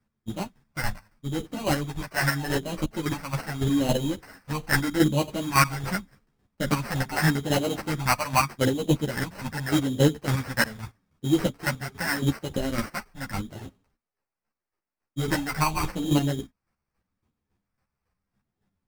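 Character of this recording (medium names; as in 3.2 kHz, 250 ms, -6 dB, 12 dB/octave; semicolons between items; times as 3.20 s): phasing stages 2, 0.82 Hz, lowest notch 330–1500 Hz; aliases and images of a low sample rate 3.5 kHz, jitter 0%; chopped level 3.6 Hz, depth 60%, duty 25%; a shimmering, thickened sound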